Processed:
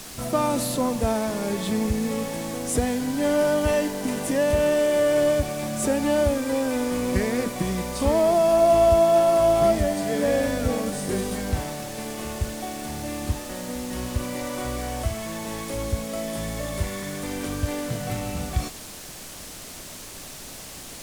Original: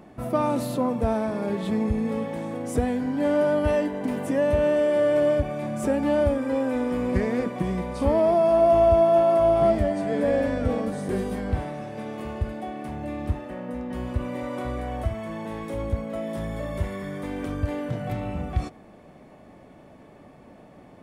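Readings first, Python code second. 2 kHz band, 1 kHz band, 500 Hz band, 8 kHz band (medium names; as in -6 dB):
+3.5 dB, +1.0 dB, +0.5 dB, no reading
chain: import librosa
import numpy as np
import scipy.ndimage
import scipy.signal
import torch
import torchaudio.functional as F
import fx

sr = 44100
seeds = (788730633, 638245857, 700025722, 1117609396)

y = fx.dmg_noise_colour(x, sr, seeds[0], colour='pink', level_db=-45.0)
y = fx.peak_eq(y, sr, hz=8200.0, db=12.0, octaves=2.5)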